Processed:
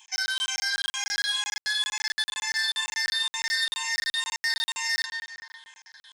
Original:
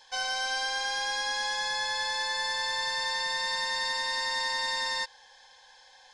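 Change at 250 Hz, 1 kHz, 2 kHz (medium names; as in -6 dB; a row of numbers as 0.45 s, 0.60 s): no reading, -8.5 dB, +2.5 dB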